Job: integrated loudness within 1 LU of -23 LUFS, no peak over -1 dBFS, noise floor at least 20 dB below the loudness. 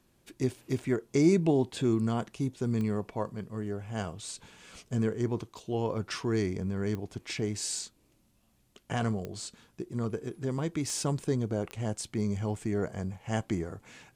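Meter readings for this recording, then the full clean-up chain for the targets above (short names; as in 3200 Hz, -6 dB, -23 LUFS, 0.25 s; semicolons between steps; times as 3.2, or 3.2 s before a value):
clicks 5; loudness -32.0 LUFS; peak -13.0 dBFS; loudness target -23.0 LUFS
-> de-click; gain +9 dB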